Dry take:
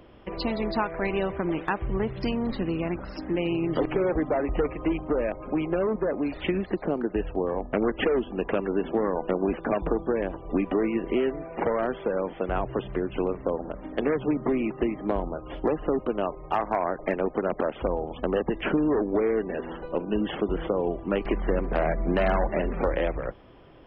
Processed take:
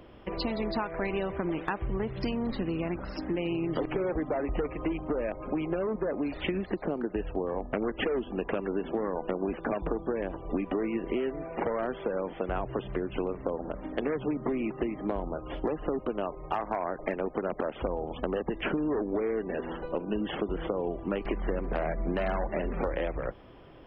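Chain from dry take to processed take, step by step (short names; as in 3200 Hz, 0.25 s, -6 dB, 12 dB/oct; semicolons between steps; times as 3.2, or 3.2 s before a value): compressor 3:1, threshold -28 dBFS, peak gain reduction 7 dB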